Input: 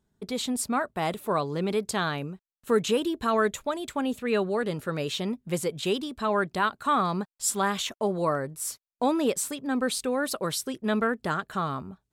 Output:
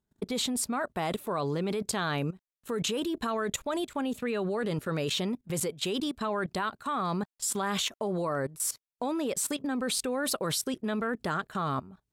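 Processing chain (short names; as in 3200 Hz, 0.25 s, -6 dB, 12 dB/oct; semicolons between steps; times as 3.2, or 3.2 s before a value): level quantiser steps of 18 dB; gain +6 dB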